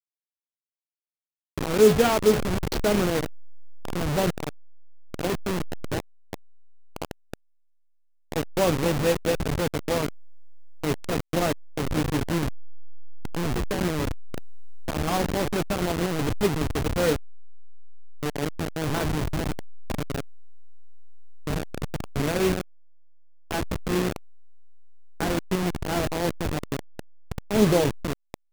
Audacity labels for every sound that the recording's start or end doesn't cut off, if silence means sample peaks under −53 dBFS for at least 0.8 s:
1.580000	7.340000	sound